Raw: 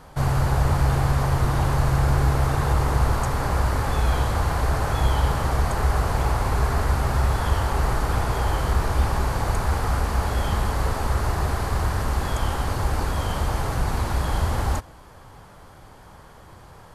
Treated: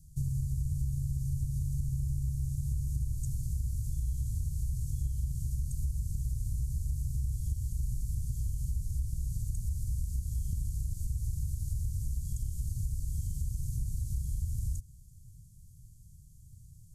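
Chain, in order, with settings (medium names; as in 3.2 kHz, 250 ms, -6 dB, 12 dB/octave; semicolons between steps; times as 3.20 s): elliptic band-stop 140–6800 Hz, stop band 70 dB; compression 4:1, threshold -26 dBFS, peak gain reduction 9.5 dB; trim -3.5 dB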